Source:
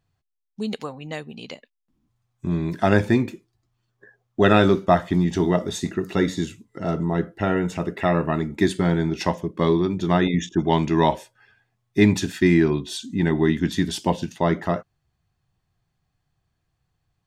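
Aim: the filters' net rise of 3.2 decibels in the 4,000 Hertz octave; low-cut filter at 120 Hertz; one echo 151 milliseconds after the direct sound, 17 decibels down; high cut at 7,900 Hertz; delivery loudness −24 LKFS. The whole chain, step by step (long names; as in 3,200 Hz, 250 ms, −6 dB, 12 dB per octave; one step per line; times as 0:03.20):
high-pass filter 120 Hz
low-pass filter 7,900 Hz
parametric band 4,000 Hz +4 dB
single-tap delay 151 ms −17 dB
level −1.5 dB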